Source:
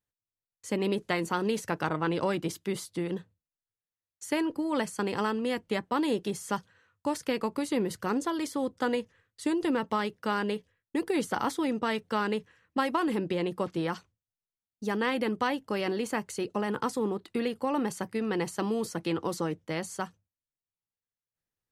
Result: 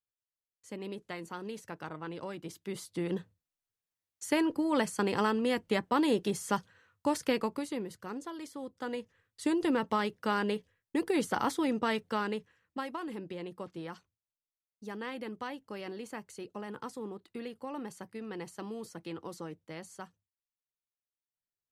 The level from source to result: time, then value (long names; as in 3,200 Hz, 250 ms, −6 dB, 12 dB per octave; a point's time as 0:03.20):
0:02.37 −12 dB
0:03.18 +0.5 dB
0:07.33 +0.5 dB
0:07.92 −11 dB
0:08.72 −11 dB
0:09.44 −1 dB
0:11.92 −1 dB
0:12.97 −11 dB